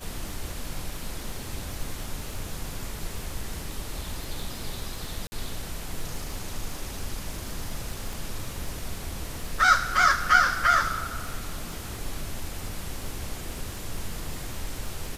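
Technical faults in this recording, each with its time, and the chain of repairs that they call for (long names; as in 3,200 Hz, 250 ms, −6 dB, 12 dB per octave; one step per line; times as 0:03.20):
surface crackle 49 per second −36 dBFS
0:05.27–0:05.32: drop-out 50 ms
0:08.13: click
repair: click removal
repair the gap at 0:05.27, 50 ms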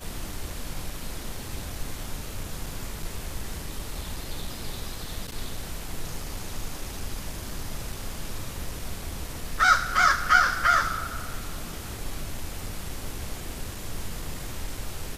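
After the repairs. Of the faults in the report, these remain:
0:08.13: click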